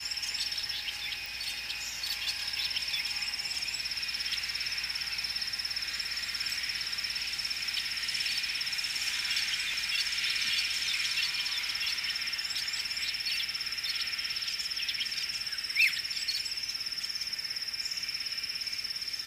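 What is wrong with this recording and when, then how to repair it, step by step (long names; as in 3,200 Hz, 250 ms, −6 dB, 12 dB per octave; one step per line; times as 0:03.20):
0:01.26: click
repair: click removal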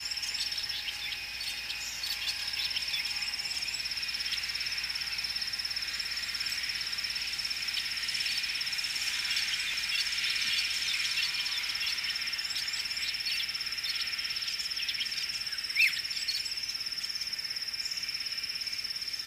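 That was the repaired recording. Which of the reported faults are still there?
none of them is left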